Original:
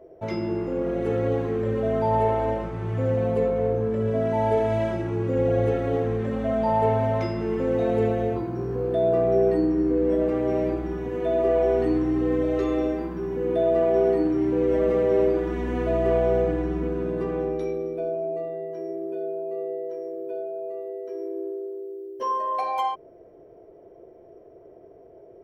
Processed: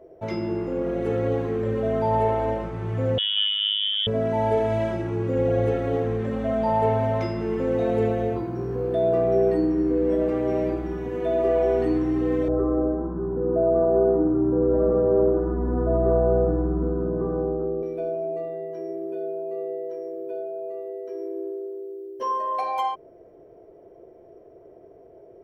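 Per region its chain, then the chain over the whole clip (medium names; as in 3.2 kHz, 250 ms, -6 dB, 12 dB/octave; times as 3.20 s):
3.18–4.07 s: frequency inversion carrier 3.5 kHz + robot voice 102 Hz
12.48–17.83 s: elliptic low-pass 1.4 kHz, stop band 50 dB + bass shelf 200 Hz +6.5 dB
whole clip: none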